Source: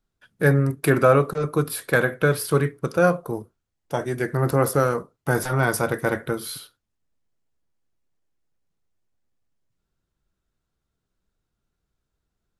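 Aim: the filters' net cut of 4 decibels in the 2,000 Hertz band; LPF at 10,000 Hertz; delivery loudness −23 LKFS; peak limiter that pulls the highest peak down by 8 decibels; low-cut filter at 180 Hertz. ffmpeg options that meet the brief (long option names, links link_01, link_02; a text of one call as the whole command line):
ffmpeg -i in.wav -af "highpass=180,lowpass=10000,equalizer=frequency=2000:width_type=o:gain=-6,volume=4dB,alimiter=limit=-9.5dB:level=0:latency=1" out.wav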